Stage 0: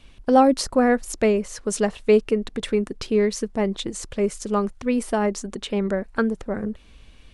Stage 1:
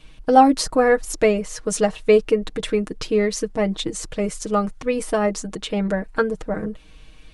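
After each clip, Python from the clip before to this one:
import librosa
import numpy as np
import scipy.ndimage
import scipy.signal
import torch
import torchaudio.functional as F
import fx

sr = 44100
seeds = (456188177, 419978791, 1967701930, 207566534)

y = x + 0.74 * np.pad(x, (int(6.4 * sr / 1000.0), 0))[:len(x)]
y = y * librosa.db_to_amplitude(1.0)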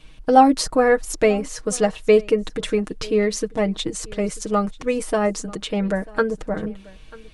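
y = x + 10.0 ** (-22.5 / 20.0) * np.pad(x, (int(940 * sr / 1000.0), 0))[:len(x)]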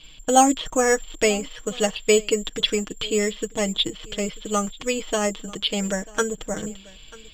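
y = (np.kron(scipy.signal.resample_poly(x, 1, 6), np.eye(6)[0]) * 6)[:len(x)]
y = fx.lowpass_res(y, sr, hz=3300.0, q=7.5)
y = y * librosa.db_to_amplitude(-4.0)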